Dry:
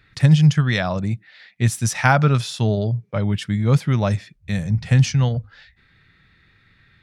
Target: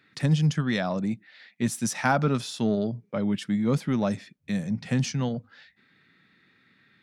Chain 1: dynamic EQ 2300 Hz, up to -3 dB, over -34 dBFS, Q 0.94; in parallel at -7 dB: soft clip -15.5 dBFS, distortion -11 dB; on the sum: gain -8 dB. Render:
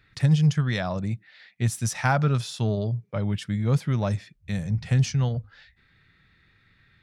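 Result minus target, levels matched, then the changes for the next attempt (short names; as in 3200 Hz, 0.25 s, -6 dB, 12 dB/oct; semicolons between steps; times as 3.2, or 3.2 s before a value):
250 Hz band -4.0 dB
add after dynamic EQ: resonant high-pass 230 Hz, resonance Q 2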